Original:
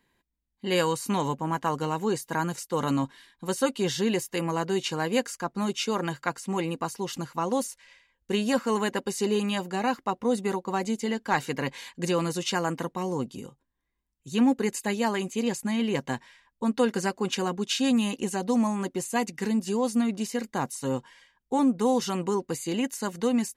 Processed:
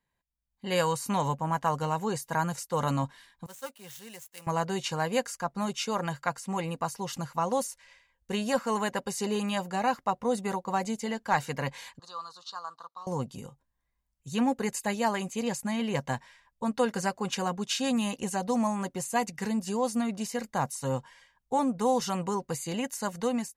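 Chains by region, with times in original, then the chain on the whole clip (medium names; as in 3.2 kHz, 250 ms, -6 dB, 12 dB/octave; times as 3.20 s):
3.46–4.47 s: median filter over 9 samples + pre-emphasis filter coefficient 0.9 + three bands expanded up and down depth 100%
11.99–13.07 s: companding laws mixed up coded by A + two resonant band-passes 2.2 kHz, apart 1.8 oct
whole clip: FFT filter 140 Hz 0 dB, 340 Hz -12 dB, 600 Hz 0 dB, 3.3 kHz -6 dB, 5.5 kHz -3 dB; level rider gain up to 11.5 dB; trim -9 dB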